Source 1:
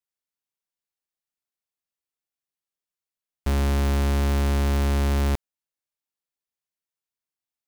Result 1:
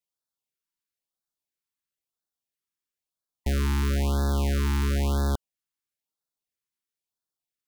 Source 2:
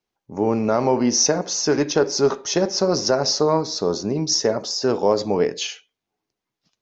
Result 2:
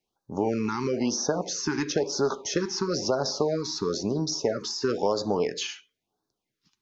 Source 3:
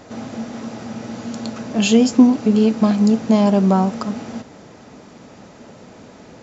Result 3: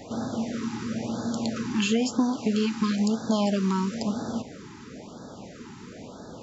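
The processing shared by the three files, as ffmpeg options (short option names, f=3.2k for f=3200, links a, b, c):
-filter_complex "[0:a]acrossover=split=860|2000[a][b][c];[a]acompressor=threshold=-24dB:ratio=4[d];[b]acompressor=threshold=-32dB:ratio=4[e];[c]acompressor=threshold=-32dB:ratio=4[f];[d][e][f]amix=inputs=3:normalize=0,afftfilt=real='re*(1-between(b*sr/1024,550*pow(2500/550,0.5+0.5*sin(2*PI*1*pts/sr))/1.41,550*pow(2500/550,0.5+0.5*sin(2*PI*1*pts/sr))*1.41))':imag='im*(1-between(b*sr/1024,550*pow(2500/550,0.5+0.5*sin(2*PI*1*pts/sr))/1.41,550*pow(2500/550,0.5+0.5*sin(2*PI*1*pts/sr))*1.41))':win_size=1024:overlap=0.75"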